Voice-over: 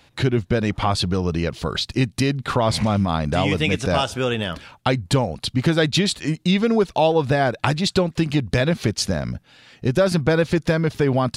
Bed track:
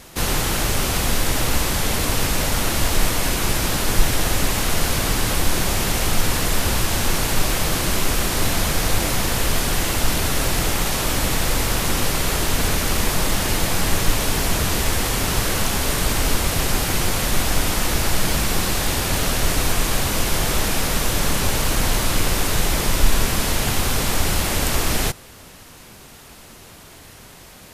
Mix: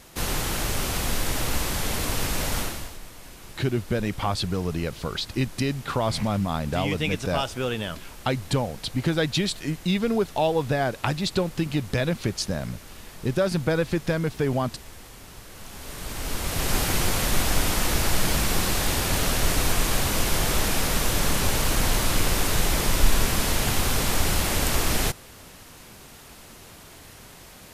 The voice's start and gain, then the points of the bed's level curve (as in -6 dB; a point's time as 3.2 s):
3.40 s, -5.5 dB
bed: 2.6 s -6 dB
3 s -23.5 dB
15.48 s -23.5 dB
16.76 s -3 dB